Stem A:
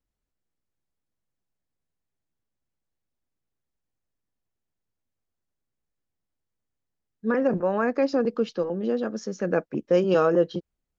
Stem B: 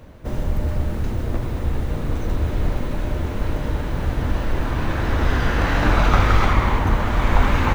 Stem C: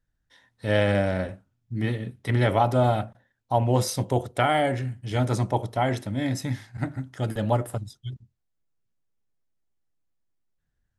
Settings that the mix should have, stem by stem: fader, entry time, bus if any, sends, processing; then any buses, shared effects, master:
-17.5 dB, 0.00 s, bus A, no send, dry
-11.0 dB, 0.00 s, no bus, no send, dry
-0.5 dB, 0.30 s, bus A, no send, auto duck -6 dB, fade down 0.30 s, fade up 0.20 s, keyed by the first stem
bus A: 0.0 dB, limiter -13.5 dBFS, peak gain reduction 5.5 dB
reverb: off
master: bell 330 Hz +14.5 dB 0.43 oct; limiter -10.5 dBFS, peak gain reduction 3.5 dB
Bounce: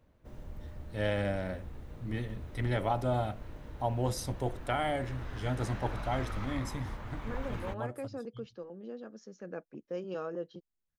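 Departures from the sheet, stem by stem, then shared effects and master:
stem B -11.0 dB -> -22.5 dB; stem C -0.5 dB -> -9.5 dB; master: missing bell 330 Hz +14.5 dB 0.43 oct

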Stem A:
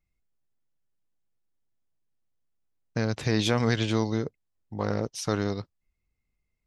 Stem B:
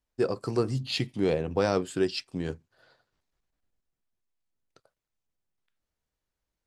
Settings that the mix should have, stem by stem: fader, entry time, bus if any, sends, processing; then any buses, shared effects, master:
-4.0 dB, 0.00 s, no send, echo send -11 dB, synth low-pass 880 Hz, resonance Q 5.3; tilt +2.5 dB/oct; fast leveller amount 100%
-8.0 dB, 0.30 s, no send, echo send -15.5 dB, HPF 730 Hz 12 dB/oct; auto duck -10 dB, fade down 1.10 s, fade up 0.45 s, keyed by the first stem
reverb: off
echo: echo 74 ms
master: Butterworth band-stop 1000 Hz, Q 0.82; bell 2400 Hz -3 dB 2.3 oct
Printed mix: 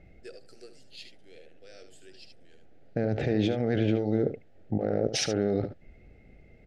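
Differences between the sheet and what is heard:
stem B: entry 0.30 s -> 0.05 s; master: missing bell 2400 Hz -3 dB 2.3 oct

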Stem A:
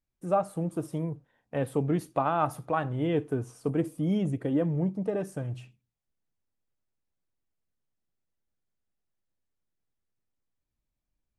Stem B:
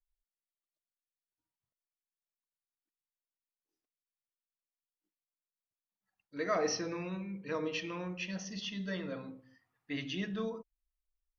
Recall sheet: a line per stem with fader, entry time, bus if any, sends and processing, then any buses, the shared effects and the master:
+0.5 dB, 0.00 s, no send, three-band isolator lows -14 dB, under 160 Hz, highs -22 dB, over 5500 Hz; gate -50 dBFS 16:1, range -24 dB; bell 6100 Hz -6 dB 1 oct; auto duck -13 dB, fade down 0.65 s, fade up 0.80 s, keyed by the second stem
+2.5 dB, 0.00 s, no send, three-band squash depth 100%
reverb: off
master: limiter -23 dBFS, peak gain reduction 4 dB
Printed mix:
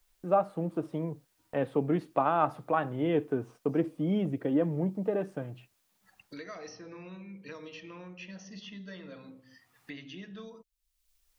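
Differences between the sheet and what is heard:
stem B +2.5 dB -> -8.0 dB; master: missing limiter -23 dBFS, peak gain reduction 4 dB

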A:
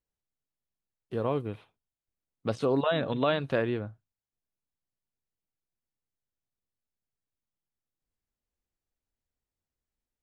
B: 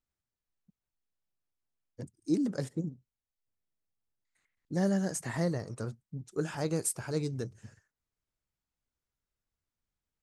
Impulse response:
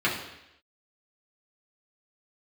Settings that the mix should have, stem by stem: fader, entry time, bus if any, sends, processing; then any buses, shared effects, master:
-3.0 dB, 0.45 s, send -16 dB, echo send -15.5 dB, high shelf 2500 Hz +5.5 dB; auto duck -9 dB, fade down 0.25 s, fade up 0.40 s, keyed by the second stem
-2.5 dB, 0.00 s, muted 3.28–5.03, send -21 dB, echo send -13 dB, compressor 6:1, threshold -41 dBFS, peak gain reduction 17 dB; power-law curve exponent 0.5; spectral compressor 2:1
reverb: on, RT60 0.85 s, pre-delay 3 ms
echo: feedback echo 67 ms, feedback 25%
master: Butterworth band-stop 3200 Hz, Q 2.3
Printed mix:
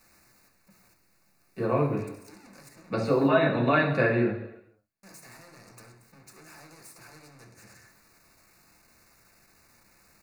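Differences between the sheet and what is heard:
stem B -2.5 dB -> -9.5 dB; reverb return +9.5 dB

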